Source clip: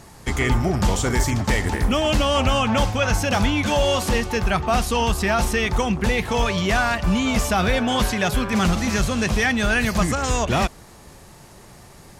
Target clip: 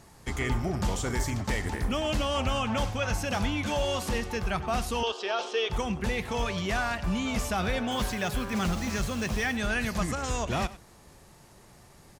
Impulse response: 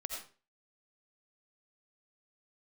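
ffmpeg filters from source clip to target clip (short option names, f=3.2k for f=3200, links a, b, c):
-filter_complex "[0:a]asettb=1/sr,asplit=3[a][b][c];[a]atrim=end=5.034[d];[b]atrim=start=5.03:end=5.7,asetpts=PTS-STARTPTS,afade=t=in:d=0.004:c=qsin,afade=t=out:st=0.666:d=0.004:c=qsin,highpass=f=380:w=0.5412,highpass=f=380:w=1.3066,equalizer=f=440:t=q:w=4:g=8,equalizer=f=2k:t=q:w=4:g=-9,equalizer=f=3.2k:t=q:w=4:g=10,lowpass=f=5.8k:w=0.5412,lowpass=f=5.8k:w=1.3066[e];[c]atrim=start=5.696[f];[d][e]acrossfade=d=0.004:c1=hsin:c2=qsin[g];[g][f]acrossfade=d=0.004:c1=qsin:c2=hsin,asettb=1/sr,asplit=3[h][i][j];[h]atrim=end=7.914[k];[i]atrim=start=7.91:end=9.57,asetpts=PTS-STARTPTS,afade=t=in:d=0.004:c=qsin,afade=t=out:st=1.656:d=0.004:c=qsin,acrusher=bits=5:mix=0:aa=0.5[l];[j]atrim=start=9.566[m];[k][l]acrossfade=d=0.004:c1=hsin:c2=qsin[n];[n][m]acrossfade=d=0.004:c1=qsin:c2=hsin,aecho=1:1:97:0.133,volume=-9dB"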